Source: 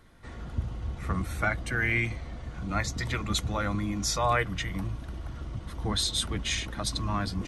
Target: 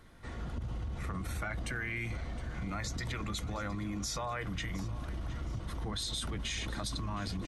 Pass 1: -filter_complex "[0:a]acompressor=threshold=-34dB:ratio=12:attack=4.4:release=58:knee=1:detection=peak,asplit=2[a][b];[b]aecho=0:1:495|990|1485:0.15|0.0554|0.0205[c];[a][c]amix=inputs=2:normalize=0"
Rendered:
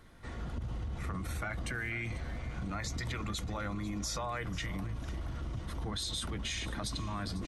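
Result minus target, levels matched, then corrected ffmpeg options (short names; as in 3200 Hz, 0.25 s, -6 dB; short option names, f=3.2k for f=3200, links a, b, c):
echo 0.22 s early
-filter_complex "[0:a]acompressor=threshold=-34dB:ratio=12:attack=4.4:release=58:knee=1:detection=peak,asplit=2[a][b];[b]aecho=0:1:715|1430|2145:0.15|0.0554|0.0205[c];[a][c]amix=inputs=2:normalize=0"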